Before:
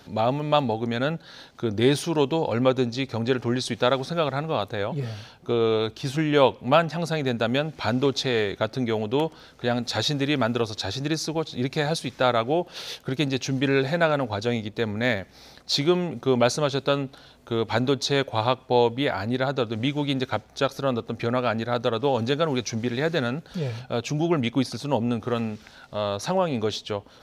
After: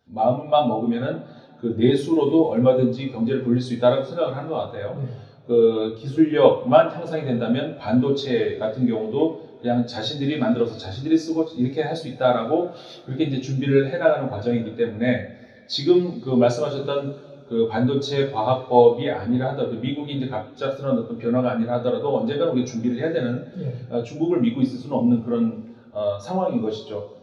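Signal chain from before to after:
coupled-rooms reverb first 0.48 s, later 4.1 s, from −17 dB, DRR −2 dB
every bin expanded away from the loudest bin 1.5 to 1

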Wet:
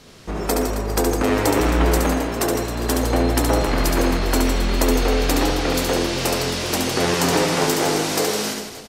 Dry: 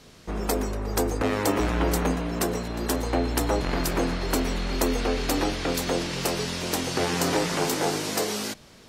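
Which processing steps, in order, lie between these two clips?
reverse bouncing-ball delay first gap 70 ms, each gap 1.25×, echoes 5
level +4 dB

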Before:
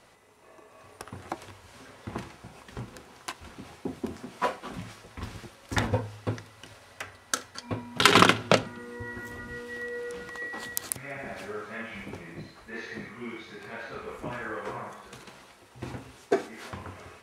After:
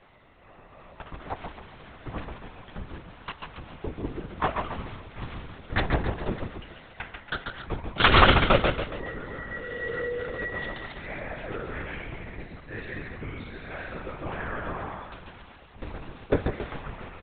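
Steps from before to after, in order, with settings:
on a send: repeating echo 139 ms, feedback 44%, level −4.5 dB
on the sum: linear-prediction vocoder at 8 kHz whisper
level +1.5 dB

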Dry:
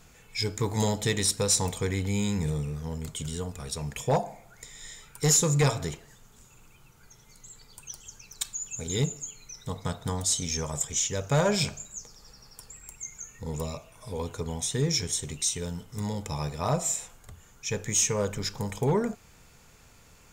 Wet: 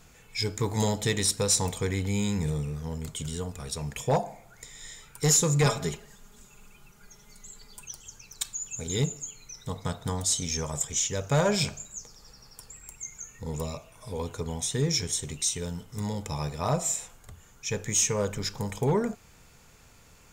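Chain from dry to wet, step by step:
0:05.65–0:07.86: comb filter 4.9 ms, depth 75%

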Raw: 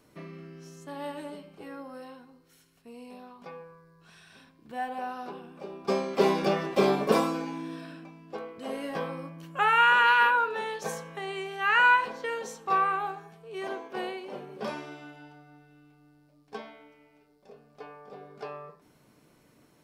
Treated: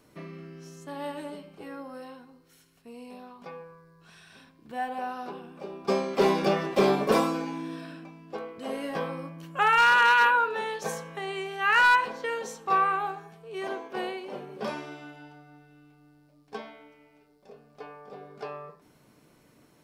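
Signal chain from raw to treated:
gain into a clipping stage and back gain 16 dB
level +1.5 dB

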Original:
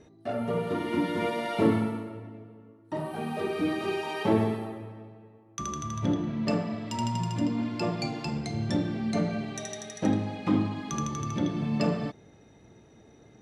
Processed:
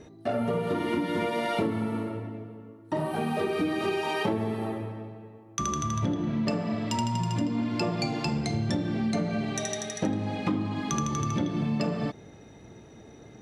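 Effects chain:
downward compressor 10 to 1, threshold −30 dBFS, peak gain reduction 13.5 dB
level +6 dB

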